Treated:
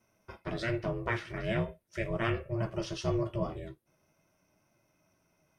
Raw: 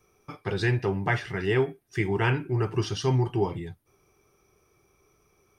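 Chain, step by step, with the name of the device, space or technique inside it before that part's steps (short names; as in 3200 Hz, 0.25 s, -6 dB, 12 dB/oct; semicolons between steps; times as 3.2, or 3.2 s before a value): alien voice (ring modulator 230 Hz; flange 0.42 Hz, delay 8.4 ms, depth 7.9 ms, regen -46%)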